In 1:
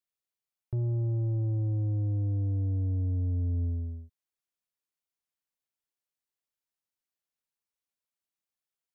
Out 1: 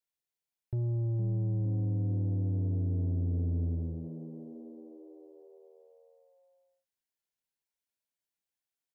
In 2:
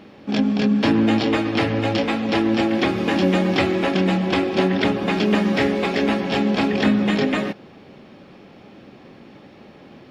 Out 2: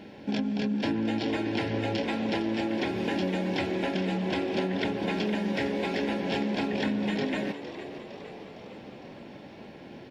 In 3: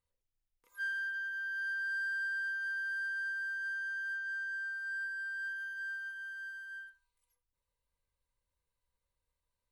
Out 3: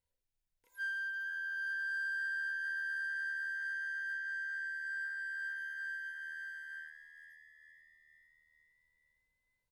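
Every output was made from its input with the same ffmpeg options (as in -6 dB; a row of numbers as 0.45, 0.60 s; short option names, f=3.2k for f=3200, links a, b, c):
-filter_complex "[0:a]acompressor=threshold=-26dB:ratio=4,asuperstop=centerf=1200:order=20:qfactor=4.9,asplit=2[a][b];[b]asplit=6[c][d][e][f][g][h];[c]adelay=459,afreqshift=76,volume=-12.5dB[i];[d]adelay=918,afreqshift=152,volume=-17.2dB[j];[e]adelay=1377,afreqshift=228,volume=-22dB[k];[f]adelay=1836,afreqshift=304,volume=-26.7dB[l];[g]adelay=2295,afreqshift=380,volume=-31.4dB[m];[h]adelay=2754,afreqshift=456,volume=-36.2dB[n];[i][j][k][l][m][n]amix=inputs=6:normalize=0[o];[a][o]amix=inputs=2:normalize=0,volume=-1.5dB"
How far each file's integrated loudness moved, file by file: -2.0, -9.5, -1.0 LU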